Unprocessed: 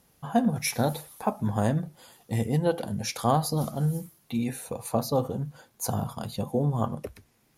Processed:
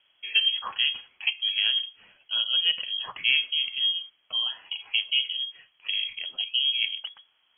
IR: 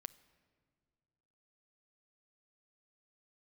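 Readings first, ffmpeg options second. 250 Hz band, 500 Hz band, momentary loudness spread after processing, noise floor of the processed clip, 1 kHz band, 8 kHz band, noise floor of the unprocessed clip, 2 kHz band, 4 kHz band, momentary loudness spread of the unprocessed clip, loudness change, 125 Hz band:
under -35 dB, under -25 dB, 9 LU, -68 dBFS, -14.0 dB, under -40 dB, -66 dBFS, +12.0 dB, +20.5 dB, 9 LU, +3.5 dB, under -40 dB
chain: -af "lowpass=f=2.9k:t=q:w=0.5098,lowpass=f=2.9k:t=q:w=0.6013,lowpass=f=2.9k:t=q:w=0.9,lowpass=f=2.9k:t=q:w=2.563,afreqshift=-3400,bandreject=f=60:t=h:w=6,bandreject=f=120:t=h:w=6"

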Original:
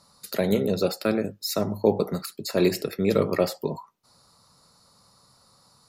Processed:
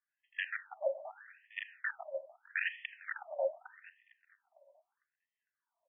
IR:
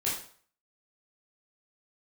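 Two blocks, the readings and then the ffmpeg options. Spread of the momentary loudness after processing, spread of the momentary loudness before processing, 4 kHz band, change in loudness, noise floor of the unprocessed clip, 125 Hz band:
17 LU, 9 LU, -17.0 dB, -14.0 dB, -61 dBFS, under -40 dB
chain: -filter_complex "[0:a]acrossover=split=3600[a][b];[a]adynamicsmooth=sensitivity=1:basefreq=1.3k[c];[c][b]amix=inputs=2:normalize=0,acrossover=split=410[d][e];[d]aeval=exprs='val(0)*(1-0.5/2+0.5/2*cos(2*PI*2.5*n/s))':c=same[f];[e]aeval=exprs='val(0)*(1-0.5/2-0.5/2*cos(2*PI*2.5*n/s))':c=same[g];[f][g]amix=inputs=2:normalize=0,aecho=1:1:1.9:0.99,aeval=exprs='(mod(5.96*val(0)+1,2)-1)/5.96':c=same,asplit=3[h][i][j];[h]bandpass=f=530:t=q:w=8,volume=0dB[k];[i]bandpass=f=1.84k:t=q:w=8,volume=-6dB[l];[j]bandpass=f=2.48k:t=q:w=8,volume=-9dB[m];[k][l][m]amix=inputs=3:normalize=0,asplit=2[n][o];[o]adelay=453,lowpass=f=1.2k:p=1,volume=-15.5dB,asplit=2[p][q];[q]adelay=453,lowpass=f=1.2k:p=1,volume=0.52,asplit=2[r][s];[s]adelay=453,lowpass=f=1.2k:p=1,volume=0.52,asplit=2[t][u];[u]adelay=453,lowpass=f=1.2k:p=1,volume=0.52,asplit=2[v][w];[w]adelay=453,lowpass=f=1.2k:p=1,volume=0.52[x];[n][p][r][t][v][x]amix=inputs=6:normalize=0,asplit=2[y][z];[1:a]atrim=start_sample=2205,asetrate=25578,aresample=44100[aa];[z][aa]afir=irnorm=-1:irlink=0,volume=-22dB[ab];[y][ab]amix=inputs=2:normalize=0,afftfilt=real='re*between(b*sr/1024,760*pow(2500/760,0.5+0.5*sin(2*PI*0.8*pts/sr))/1.41,760*pow(2500/760,0.5+0.5*sin(2*PI*0.8*pts/sr))*1.41)':imag='im*between(b*sr/1024,760*pow(2500/760,0.5+0.5*sin(2*PI*0.8*pts/sr))/1.41,760*pow(2500/760,0.5+0.5*sin(2*PI*0.8*pts/sr))*1.41)':win_size=1024:overlap=0.75,volume=5.5dB"

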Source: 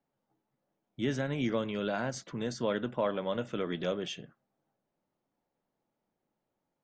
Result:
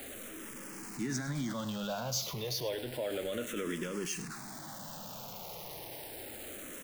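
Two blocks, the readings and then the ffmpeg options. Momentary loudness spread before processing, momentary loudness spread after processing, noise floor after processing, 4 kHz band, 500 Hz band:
5 LU, 9 LU, -46 dBFS, +2.5 dB, -4.5 dB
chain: -filter_complex "[0:a]aeval=exprs='val(0)+0.5*0.0119*sgn(val(0))':c=same,alimiter=level_in=2dB:limit=-24dB:level=0:latency=1:release=22,volume=-2dB,highshelf=f=3.8k:g=11,asplit=2[a][b];[b]aecho=0:1:102:0.188[c];[a][c]amix=inputs=2:normalize=0,asplit=2[d][e];[e]afreqshift=-0.31[f];[d][f]amix=inputs=2:normalize=1"

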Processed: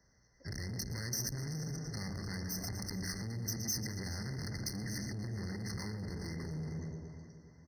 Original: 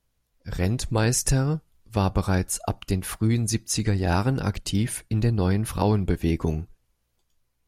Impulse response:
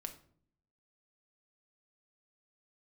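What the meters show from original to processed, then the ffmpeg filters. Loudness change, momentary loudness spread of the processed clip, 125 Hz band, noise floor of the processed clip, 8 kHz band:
-14.5 dB, 7 LU, -15.5 dB, -68 dBFS, -10.5 dB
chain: -filter_complex "[0:a]equalizer=f=4.6k:t=o:w=0.56:g=-14.5,aecho=1:1:115|230|345|460|575|690:0.251|0.141|0.0788|0.0441|0.0247|0.0138,asplit=2[a][b];[1:a]atrim=start_sample=2205[c];[b][c]afir=irnorm=-1:irlink=0,volume=5dB[d];[a][d]amix=inputs=2:normalize=0,aresample=16000,aresample=44100,acompressor=threshold=-20dB:ratio=8,asoftclip=type=hard:threshold=-29.5dB,acrossover=split=210|2000[e][f][g];[e]acompressor=threshold=-34dB:ratio=4[h];[f]acompressor=threshold=-48dB:ratio=4[i];[g]acompressor=threshold=-40dB:ratio=4[j];[h][i][j]amix=inputs=3:normalize=0,asoftclip=type=tanh:threshold=-38.5dB,highpass=67,highshelf=f=1.8k:t=q:w=1.5:g=11.5,asplit=2[k][l];[l]adelay=418,lowpass=f=3.4k:p=1,volume=-11dB,asplit=2[m][n];[n]adelay=418,lowpass=f=3.4k:p=1,volume=0.45,asplit=2[o][p];[p]adelay=418,lowpass=f=3.4k:p=1,volume=0.45,asplit=2[q][r];[r]adelay=418,lowpass=f=3.4k:p=1,volume=0.45,asplit=2[s][t];[t]adelay=418,lowpass=f=3.4k:p=1,volume=0.45[u];[m][o][q][s][u]amix=inputs=5:normalize=0[v];[k][v]amix=inputs=2:normalize=0,afftfilt=real='re*eq(mod(floor(b*sr/1024/2100),2),0)':imag='im*eq(mod(floor(b*sr/1024/2100),2),0)':win_size=1024:overlap=0.75,volume=1.5dB"

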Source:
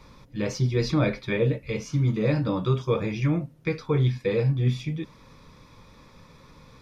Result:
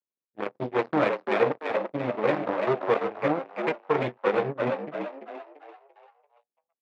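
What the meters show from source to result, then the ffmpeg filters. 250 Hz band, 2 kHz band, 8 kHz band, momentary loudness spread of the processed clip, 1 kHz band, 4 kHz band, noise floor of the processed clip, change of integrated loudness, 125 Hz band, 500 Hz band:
-4.5 dB, +3.0 dB, n/a, 12 LU, +9.5 dB, -5.0 dB, under -85 dBFS, -1.5 dB, -16.0 dB, +2.5 dB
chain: -filter_complex "[0:a]aeval=exprs='sgn(val(0))*max(abs(val(0))-0.00335,0)':c=same,aeval=exprs='0.282*(cos(1*acos(clip(val(0)/0.282,-1,1)))-cos(1*PI/2))+0.0398*(cos(7*acos(clip(val(0)/0.282,-1,1)))-cos(7*PI/2))':c=same,adynamicsmooth=sensitivity=6:basefreq=530,highpass=380,lowpass=2.2k,asplit=6[a][b][c][d][e][f];[b]adelay=340,afreqshift=69,volume=-5dB[g];[c]adelay=680,afreqshift=138,volume=-12.5dB[h];[d]adelay=1020,afreqshift=207,volume=-20.1dB[i];[e]adelay=1360,afreqshift=276,volume=-27.6dB[j];[f]adelay=1700,afreqshift=345,volume=-35.1dB[k];[a][g][h][i][j][k]amix=inputs=6:normalize=0,volume=4dB"

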